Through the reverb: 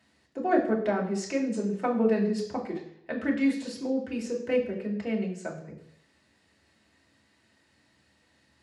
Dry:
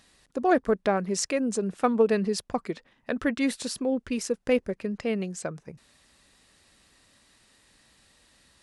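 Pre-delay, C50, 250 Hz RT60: 3 ms, 7.5 dB, 0.70 s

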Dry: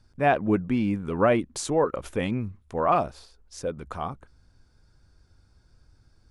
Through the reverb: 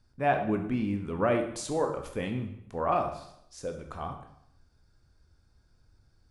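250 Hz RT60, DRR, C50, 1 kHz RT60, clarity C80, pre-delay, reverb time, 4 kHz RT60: 0.80 s, 4.5 dB, 7.5 dB, 0.75 s, 11.0 dB, 18 ms, 0.75 s, 0.70 s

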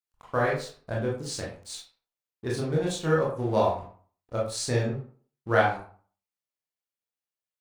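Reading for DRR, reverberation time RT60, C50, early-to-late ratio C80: -5.0 dB, 0.45 s, 4.5 dB, 10.0 dB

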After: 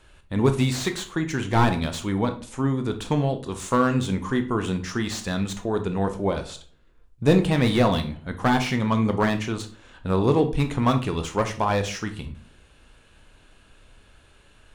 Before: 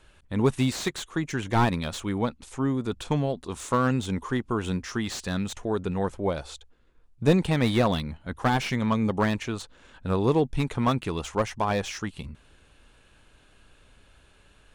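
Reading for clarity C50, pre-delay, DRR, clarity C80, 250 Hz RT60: 12.0 dB, 15 ms, 7.0 dB, 17.0 dB, 0.50 s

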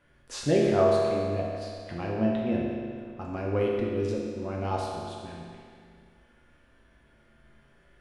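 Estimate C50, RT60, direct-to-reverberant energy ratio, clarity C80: -0.5 dB, 2.2 s, -4.0 dB, 1.0 dB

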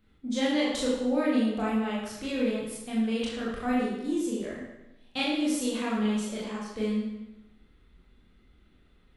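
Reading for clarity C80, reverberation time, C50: 3.0 dB, 0.95 s, 0.0 dB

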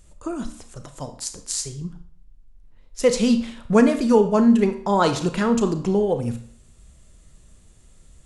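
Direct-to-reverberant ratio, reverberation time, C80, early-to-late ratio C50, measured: 8.0 dB, 0.55 s, 15.0 dB, 11.0 dB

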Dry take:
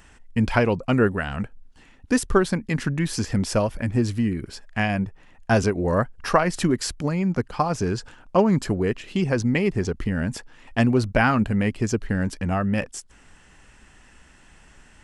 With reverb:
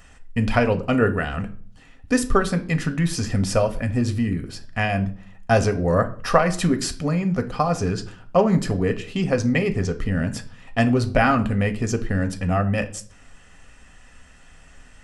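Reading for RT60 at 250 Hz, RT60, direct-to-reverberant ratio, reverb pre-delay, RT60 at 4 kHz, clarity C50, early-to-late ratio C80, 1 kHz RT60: 0.60 s, 0.45 s, 7.0 dB, 4 ms, 0.40 s, 15.5 dB, 19.5 dB, 0.45 s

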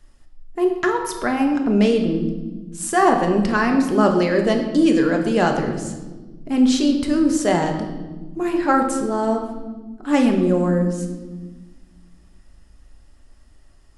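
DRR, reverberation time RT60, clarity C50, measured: 3.0 dB, 1.3 s, 6.5 dB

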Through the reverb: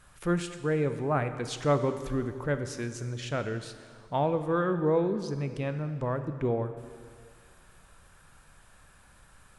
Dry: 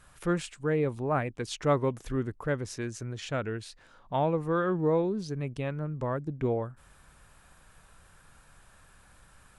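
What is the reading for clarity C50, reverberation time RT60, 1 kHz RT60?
10.0 dB, 2.0 s, 2.0 s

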